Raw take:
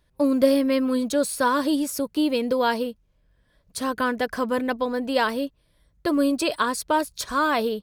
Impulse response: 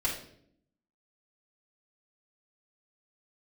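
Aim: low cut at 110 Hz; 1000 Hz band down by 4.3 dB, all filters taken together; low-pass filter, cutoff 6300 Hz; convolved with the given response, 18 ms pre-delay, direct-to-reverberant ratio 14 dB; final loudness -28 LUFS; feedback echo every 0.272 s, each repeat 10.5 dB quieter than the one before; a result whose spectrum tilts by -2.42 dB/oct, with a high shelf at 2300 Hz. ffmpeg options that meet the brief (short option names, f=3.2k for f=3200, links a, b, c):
-filter_complex "[0:a]highpass=110,lowpass=6.3k,equalizer=f=1k:t=o:g=-6.5,highshelf=f=2.3k:g=7.5,aecho=1:1:272|544|816:0.299|0.0896|0.0269,asplit=2[a][b];[1:a]atrim=start_sample=2205,adelay=18[c];[b][c]afir=irnorm=-1:irlink=0,volume=-21dB[d];[a][d]amix=inputs=2:normalize=0,volume=-4.5dB"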